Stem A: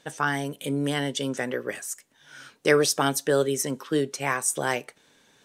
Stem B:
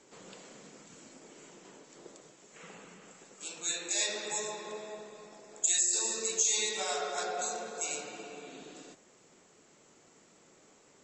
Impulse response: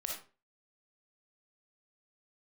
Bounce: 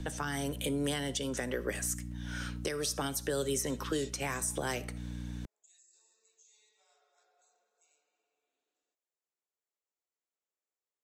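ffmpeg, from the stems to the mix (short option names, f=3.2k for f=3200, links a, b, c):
-filter_complex "[0:a]aeval=exprs='val(0)+0.0126*(sin(2*PI*60*n/s)+sin(2*PI*2*60*n/s)/2+sin(2*PI*3*60*n/s)/3+sin(2*PI*4*60*n/s)/4+sin(2*PI*5*60*n/s)/5)':c=same,volume=2.5dB,asplit=3[a][b][c];[b]volume=-17dB[d];[1:a]highpass=490,volume=-12.5dB[e];[c]apad=whole_len=486681[f];[e][f]sidechaingate=range=-24dB:threshold=-25dB:ratio=16:detection=peak[g];[2:a]atrim=start_sample=2205[h];[d][h]afir=irnorm=-1:irlink=0[i];[a][g][i]amix=inputs=3:normalize=0,acrossover=split=130|330|3800[j][k][l][m];[j]acompressor=threshold=-43dB:ratio=4[n];[k]acompressor=threshold=-37dB:ratio=4[o];[l]acompressor=threshold=-32dB:ratio=4[p];[m]acompressor=threshold=-30dB:ratio=4[q];[n][o][p][q]amix=inputs=4:normalize=0,alimiter=limit=-22.5dB:level=0:latency=1:release=359"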